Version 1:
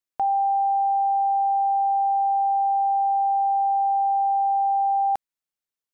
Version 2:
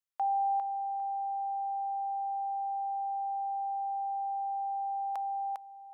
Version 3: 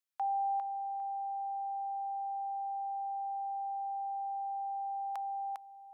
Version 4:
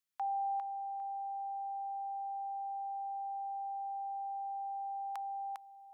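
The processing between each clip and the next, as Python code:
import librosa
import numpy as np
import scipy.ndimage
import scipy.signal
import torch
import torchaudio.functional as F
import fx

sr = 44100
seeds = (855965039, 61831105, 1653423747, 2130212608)

y1 = scipy.signal.sosfilt(scipy.signal.cheby1(2, 1.0, 890.0, 'highpass', fs=sr, output='sos'), x)
y1 = fx.echo_feedback(y1, sr, ms=402, feedback_pct=19, wet_db=-4.0)
y1 = F.gain(torch.from_numpy(y1), -5.5).numpy()
y2 = scipy.signal.sosfilt(scipy.signal.butter(2, 820.0, 'highpass', fs=sr, output='sos'), y1)
y3 = fx.peak_eq(y2, sr, hz=580.0, db=-9.0, octaves=0.71)
y3 = F.gain(torch.from_numpy(y3), 1.0).numpy()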